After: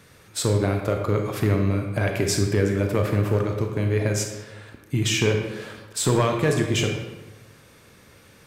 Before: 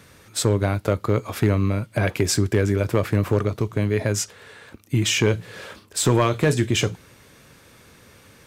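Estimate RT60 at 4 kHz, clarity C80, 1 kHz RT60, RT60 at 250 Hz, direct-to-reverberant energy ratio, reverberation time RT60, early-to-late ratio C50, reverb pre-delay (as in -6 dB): 0.75 s, 6.5 dB, 1.2 s, 1.2 s, 3.0 dB, 1.2 s, 4.5 dB, 30 ms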